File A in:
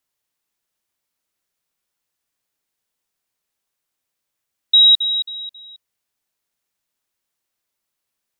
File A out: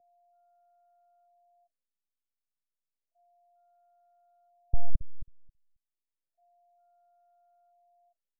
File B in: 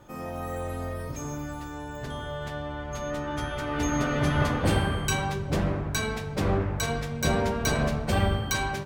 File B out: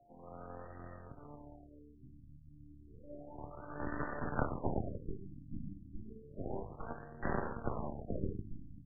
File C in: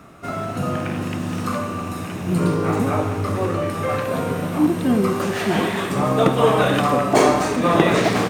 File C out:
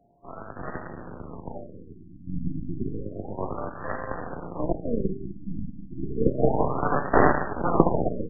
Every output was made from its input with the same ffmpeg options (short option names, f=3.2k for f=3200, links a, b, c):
-filter_complex "[0:a]bandreject=f=50:t=h:w=6,bandreject=f=100:t=h:w=6,bandreject=f=150:t=h:w=6,bandreject=f=200:t=h:w=6,bandreject=f=250:t=h:w=6,bandreject=f=300:t=h:w=6,aeval=exprs='val(0)+0.00501*sin(2*PI*700*n/s)':c=same,lowpass=f=7.3k:t=q:w=2.3,aeval=exprs='0.944*(cos(1*acos(clip(val(0)/0.944,-1,1)))-cos(1*PI/2))+0.237*(cos(3*acos(clip(val(0)/0.944,-1,1)))-cos(3*PI/2))+0.106*(cos(6*acos(clip(val(0)/0.944,-1,1)))-cos(6*PI/2))+0.0211*(cos(7*acos(clip(val(0)/0.944,-1,1)))-cos(7*PI/2))+0.00596*(cos(8*acos(clip(val(0)/0.944,-1,1)))-cos(8*PI/2))':c=same,acrossover=split=130|2400[a][b][c];[c]asoftclip=type=hard:threshold=-16.5dB[d];[a][b][d]amix=inputs=3:normalize=0,afftfilt=real='re*lt(b*sr/1024,300*pow(2000/300,0.5+0.5*sin(2*PI*0.31*pts/sr)))':imag='im*lt(b*sr/1024,300*pow(2000/300,0.5+0.5*sin(2*PI*0.31*pts/sr)))':win_size=1024:overlap=0.75,volume=2.5dB"